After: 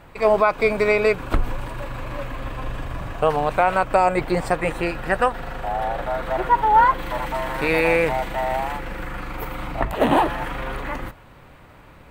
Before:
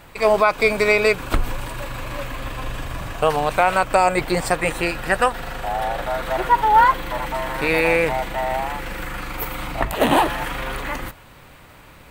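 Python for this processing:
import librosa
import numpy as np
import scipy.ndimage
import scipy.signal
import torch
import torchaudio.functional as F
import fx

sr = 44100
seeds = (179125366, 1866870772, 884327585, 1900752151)

y = fx.high_shelf(x, sr, hz=2800.0, db=fx.steps((0.0, -11.5), (6.98, -4.5), (8.77, -11.5)))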